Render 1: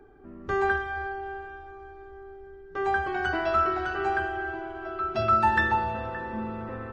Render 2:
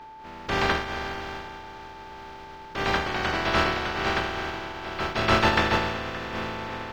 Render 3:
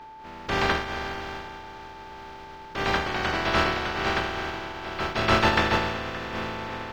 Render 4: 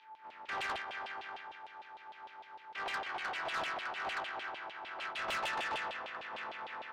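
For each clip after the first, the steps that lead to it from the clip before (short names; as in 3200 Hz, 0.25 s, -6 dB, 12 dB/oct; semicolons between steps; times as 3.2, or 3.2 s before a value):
spectral contrast lowered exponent 0.24; air absorption 230 m; whine 880 Hz -46 dBFS; gain +4 dB
nothing audible
LFO band-pass saw down 6.6 Hz 650–3400 Hz; soft clip -29.5 dBFS, distortion -10 dB; gain -3 dB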